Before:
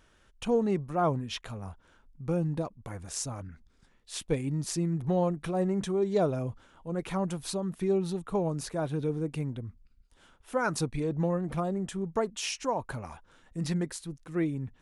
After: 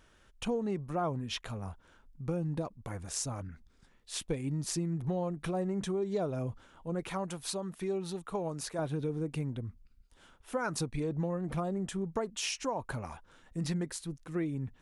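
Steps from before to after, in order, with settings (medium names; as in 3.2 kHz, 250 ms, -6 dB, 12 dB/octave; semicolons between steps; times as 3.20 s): 7.08–8.79 s: bass shelf 380 Hz -8.5 dB; compression 4:1, threshold -30 dBFS, peak gain reduction 8 dB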